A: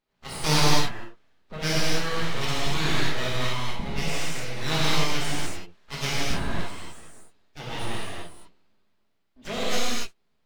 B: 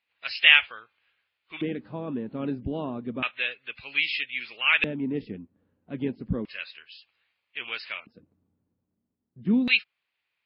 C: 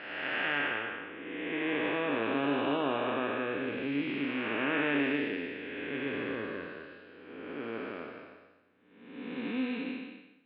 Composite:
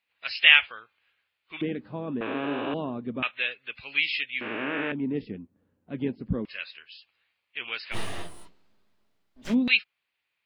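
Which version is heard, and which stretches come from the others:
B
0:02.21–0:02.74: punch in from C
0:04.41–0:04.92: punch in from C
0:07.94–0:09.52: punch in from A, crossfade 0.06 s

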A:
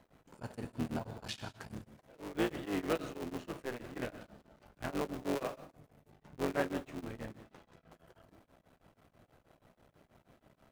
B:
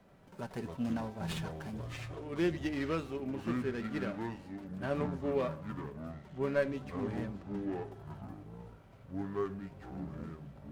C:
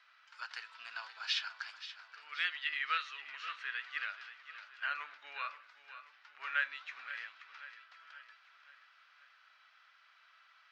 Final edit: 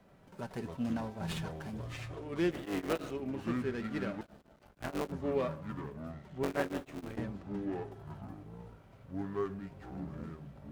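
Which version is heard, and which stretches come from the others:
B
0:02.51–0:03.11: punch in from A
0:04.21–0:05.12: punch in from A
0:06.43–0:07.17: punch in from A
not used: C

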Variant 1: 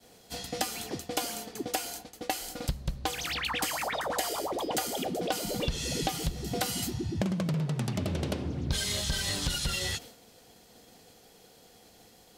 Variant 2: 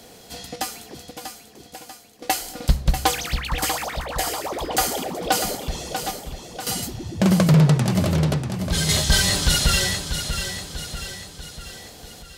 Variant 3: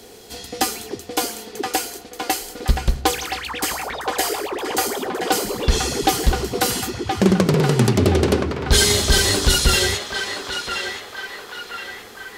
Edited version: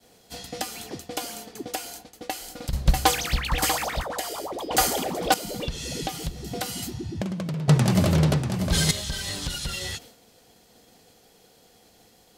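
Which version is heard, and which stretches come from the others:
1
0:02.73–0:04.03: punch in from 2
0:04.71–0:05.34: punch in from 2
0:07.68–0:08.91: punch in from 2
not used: 3

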